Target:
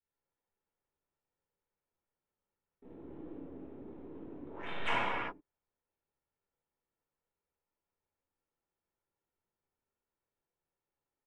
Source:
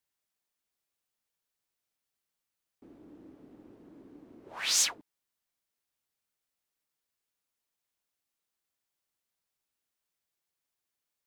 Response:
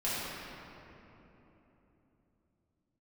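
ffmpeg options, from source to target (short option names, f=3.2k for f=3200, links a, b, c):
-filter_complex "[0:a]aecho=1:1:2.2:0.41,areverse,acompressor=threshold=-39dB:ratio=5,areverse,aeval=exprs='0.0398*(cos(1*acos(clip(val(0)/0.0398,-1,1)))-cos(1*PI/2))+0.001*(cos(6*acos(clip(val(0)/0.0398,-1,1)))-cos(6*PI/2))+0.00447*(cos(7*acos(clip(val(0)/0.0398,-1,1)))-cos(7*PI/2))':c=same,aresample=8000,acrusher=bits=3:mode=log:mix=0:aa=0.000001,aresample=44100,adynamicsmooth=sensitivity=2.5:basefreq=1.3k[a];[1:a]atrim=start_sample=2205,afade=t=out:st=0.45:d=0.01,atrim=end_sample=20286[b];[a][b]afir=irnorm=-1:irlink=0,volume=10.5dB"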